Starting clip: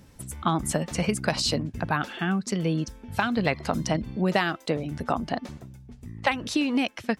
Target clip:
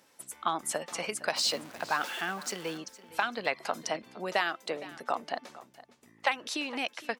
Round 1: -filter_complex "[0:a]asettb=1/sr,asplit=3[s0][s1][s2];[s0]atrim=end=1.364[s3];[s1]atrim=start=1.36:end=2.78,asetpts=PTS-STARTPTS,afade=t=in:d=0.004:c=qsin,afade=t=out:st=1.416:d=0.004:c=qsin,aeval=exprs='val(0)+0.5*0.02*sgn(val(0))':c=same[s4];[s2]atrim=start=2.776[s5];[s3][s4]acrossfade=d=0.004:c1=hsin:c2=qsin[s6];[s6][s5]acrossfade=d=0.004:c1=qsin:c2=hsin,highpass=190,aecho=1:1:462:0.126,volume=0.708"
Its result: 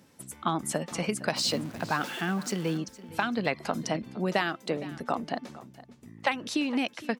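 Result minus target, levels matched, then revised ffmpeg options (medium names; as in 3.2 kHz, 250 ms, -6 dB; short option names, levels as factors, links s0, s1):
250 Hz band +9.0 dB
-filter_complex "[0:a]asettb=1/sr,asplit=3[s0][s1][s2];[s0]atrim=end=1.364[s3];[s1]atrim=start=1.36:end=2.78,asetpts=PTS-STARTPTS,afade=t=in:d=0.004:c=qsin,afade=t=out:st=1.416:d=0.004:c=qsin,aeval=exprs='val(0)+0.5*0.02*sgn(val(0))':c=same[s4];[s2]atrim=start=2.776[s5];[s3][s4]acrossfade=d=0.004:c1=hsin:c2=qsin[s6];[s6][s5]acrossfade=d=0.004:c1=qsin:c2=hsin,highpass=530,aecho=1:1:462:0.126,volume=0.708"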